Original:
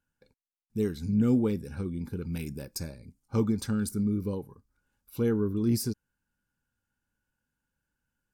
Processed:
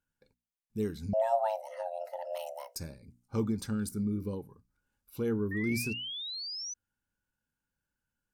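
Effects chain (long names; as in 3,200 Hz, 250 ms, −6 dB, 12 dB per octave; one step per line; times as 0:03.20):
0:05.51–0:06.74: sound drawn into the spectrogram rise 1,800–6,100 Hz −35 dBFS
mains-hum notches 60/120/180/240/300 Hz
0:01.13–0:02.76: frequency shifter +440 Hz
level −4 dB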